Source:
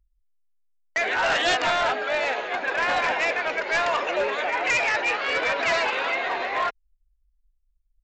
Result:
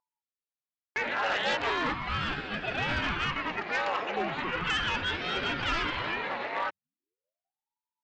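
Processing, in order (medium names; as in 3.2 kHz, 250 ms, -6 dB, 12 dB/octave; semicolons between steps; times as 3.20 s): band-pass 130–4900 Hz; ring modulator with a swept carrier 520 Hz, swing 80%, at 0.38 Hz; trim -3.5 dB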